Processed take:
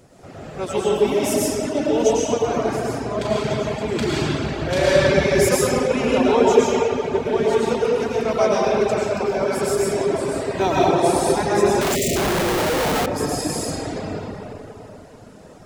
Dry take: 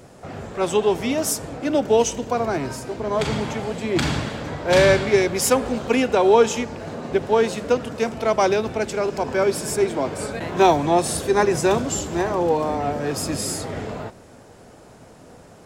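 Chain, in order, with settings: peaking EQ 1.1 kHz -2.5 dB 2.6 oct; reverberation RT60 3.4 s, pre-delay 65 ms, DRR -8 dB; reverb removal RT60 0.61 s; 11.81–13.06 s: Schmitt trigger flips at -32 dBFS; 11.95–12.16 s: spectral selection erased 690–1800 Hz; trim -4.5 dB

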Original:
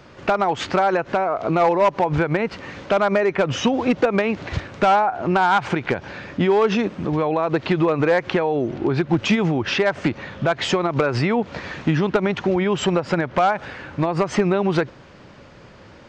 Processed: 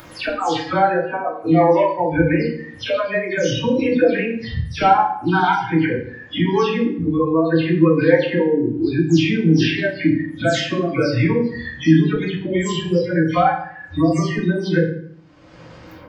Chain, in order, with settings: delay that grows with frequency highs early, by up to 175 ms; hum notches 50/100/150/200/250/300/350/400/450 Hz; spectral noise reduction 26 dB; upward compressor, threshold -22 dBFS; reverberation RT60 0.60 s, pre-delay 3 ms, DRR -1.5 dB; trim -1 dB

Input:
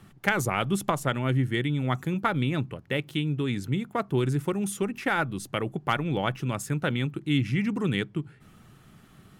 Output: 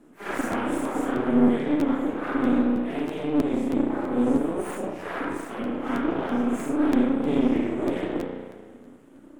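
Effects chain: phase randomisation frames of 200 ms; graphic EQ 125/250/500/1000/2000/4000/8000 Hz +7/-5/-7/-10/-9/-4/+11 dB; spring tank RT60 1.7 s, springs 33 ms, chirp 70 ms, DRR -0.5 dB; full-wave rectifier; three-band isolator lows -21 dB, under 170 Hz, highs -19 dB, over 2.1 kHz; crackling interface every 0.32 s, samples 512, repeat, from 0.51 s; trim +6.5 dB

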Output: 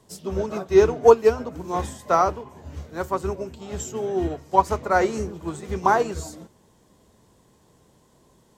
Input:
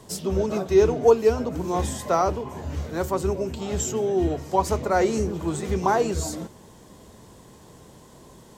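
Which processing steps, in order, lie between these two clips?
dynamic bell 1.3 kHz, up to +6 dB, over -37 dBFS, Q 0.91; upward expansion 1.5:1, over -35 dBFS; trim +2.5 dB

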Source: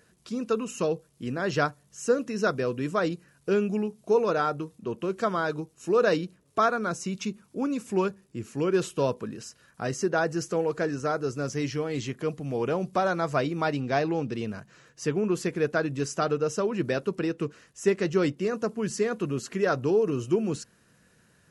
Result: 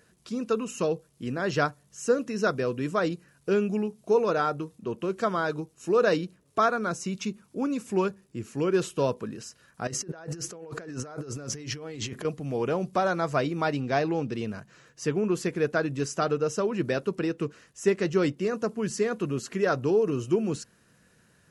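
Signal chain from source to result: 9.87–12.25 s: compressor with a negative ratio -38 dBFS, ratio -1

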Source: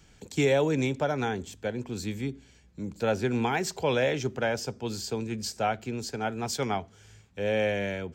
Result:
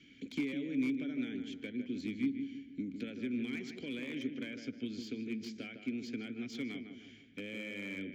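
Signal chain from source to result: elliptic low-pass 7 kHz; compression 6:1, threshold -38 dBFS, peak gain reduction 16 dB; vowel filter i; on a send: filtered feedback delay 155 ms, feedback 45%, low-pass 1.8 kHz, level -6.5 dB; on the sum: slew-rate limiter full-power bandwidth 5.9 Hz; trim +13 dB

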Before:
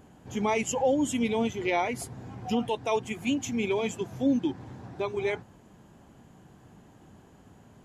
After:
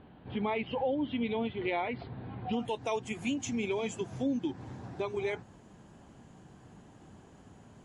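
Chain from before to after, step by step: steep low-pass 4.2 kHz 72 dB/octave, from 2.52 s 11 kHz; compression 2:1, threshold -32 dBFS, peak gain reduction 7 dB; MP3 48 kbps 24 kHz

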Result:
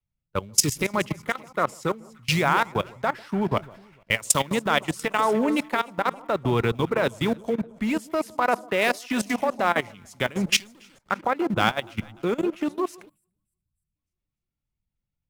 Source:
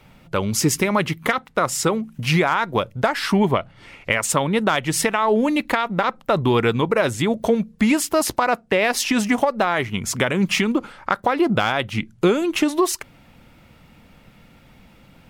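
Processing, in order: in parallel at -10 dB: companded quantiser 4-bit; 10.58–11.11 s: on the sum: overload inside the chain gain 18.5 dB; on a send: echo whose repeats swap between lows and highs 148 ms, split 1.1 kHz, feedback 74%, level -12 dB; 13.09–13.95 s: on the sum: time-frequency box 220–7300 Hz -19 dB; level held to a coarse grid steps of 18 dB; three bands expanded up and down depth 100%; trim -4 dB

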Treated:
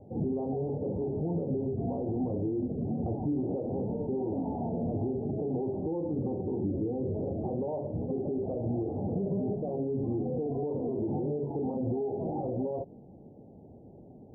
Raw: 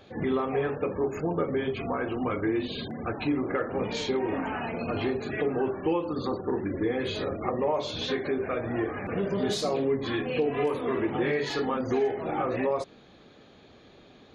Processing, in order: steep low-pass 860 Hz 72 dB/octave; peak limiter -27.5 dBFS, peak gain reduction 11 dB; peaking EQ 130 Hz +9.5 dB 2.6 oct; trim -2 dB

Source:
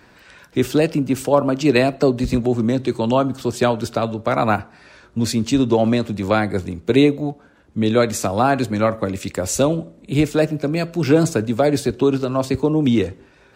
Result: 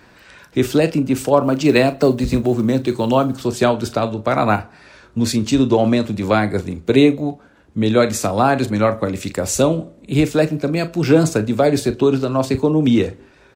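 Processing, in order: 1.43–3.45 s: block-companded coder 7-bit; doubling 38 ms -13 dB; trim +1.5 dB

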